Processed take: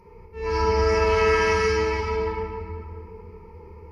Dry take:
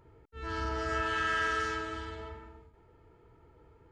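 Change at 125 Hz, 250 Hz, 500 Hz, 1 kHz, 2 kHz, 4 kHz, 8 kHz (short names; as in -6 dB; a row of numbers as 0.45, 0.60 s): +14.0, +8.5, +18.5, +9.0, +6.0, +7.5, +10.5 dB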